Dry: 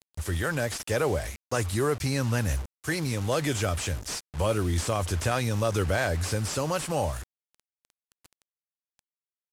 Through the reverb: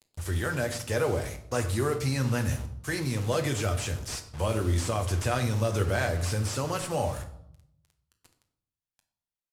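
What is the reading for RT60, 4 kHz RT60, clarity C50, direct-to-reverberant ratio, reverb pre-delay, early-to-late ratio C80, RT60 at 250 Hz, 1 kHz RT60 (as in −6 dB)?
0.75 s, 0.55 s, 11.5 dB, 5.0 dB, 8 ms, 14.0 dB, 0.95 s, 0.70 s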